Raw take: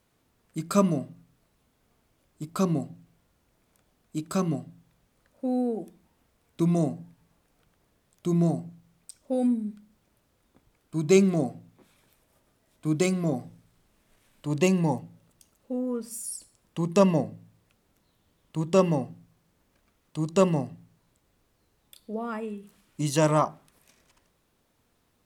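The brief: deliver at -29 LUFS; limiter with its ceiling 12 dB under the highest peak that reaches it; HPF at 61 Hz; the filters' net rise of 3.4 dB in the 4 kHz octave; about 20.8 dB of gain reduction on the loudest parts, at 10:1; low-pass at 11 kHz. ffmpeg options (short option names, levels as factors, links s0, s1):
-af "highpass=61,lowpass=11000,equalizer=f=4000:t=o:g=4.5,acompressor=threshold=0.0158:ratio=10,volume=7.08,alimiter=limit=0.126:level=0:latency=1"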